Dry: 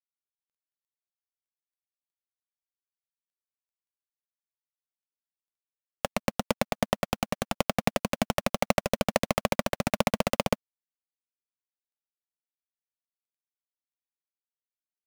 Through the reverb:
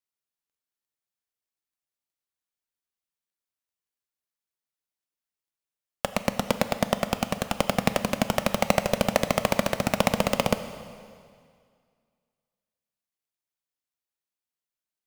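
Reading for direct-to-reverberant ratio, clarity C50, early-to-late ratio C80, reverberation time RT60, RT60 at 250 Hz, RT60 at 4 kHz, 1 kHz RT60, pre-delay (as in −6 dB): 10.0 dB, 11.5 dB, 12.0 dB, 2.1 s, 2.1 s, 2.0 s, 2.1 s, 6 ms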